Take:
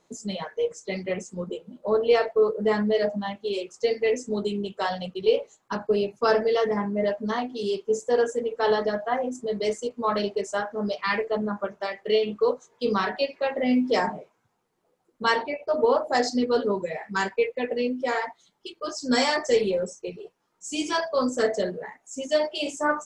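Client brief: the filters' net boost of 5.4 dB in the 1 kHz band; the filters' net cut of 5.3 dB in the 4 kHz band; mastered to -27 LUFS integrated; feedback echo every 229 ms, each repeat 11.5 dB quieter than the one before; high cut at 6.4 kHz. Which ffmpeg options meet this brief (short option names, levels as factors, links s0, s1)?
-af "lowpass=6400,equalizer=f=1000:t=o:g=7,equalizer=f=4000:t=o:g=-7,aecho=1:1:229|458|687:0.266|0.0718|0.0194,volume=0.708"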